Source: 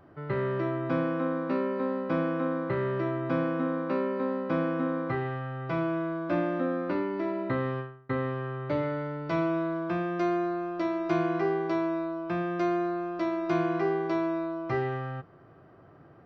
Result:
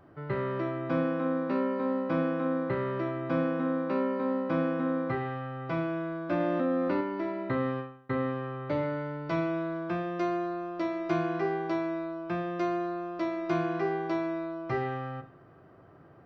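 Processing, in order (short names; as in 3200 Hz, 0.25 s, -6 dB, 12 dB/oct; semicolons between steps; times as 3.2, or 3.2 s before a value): reverb, pre-delay 41 ms, DRR 11.5 dB; 6.4–7.01 fast leveller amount 70%; gain -1 dB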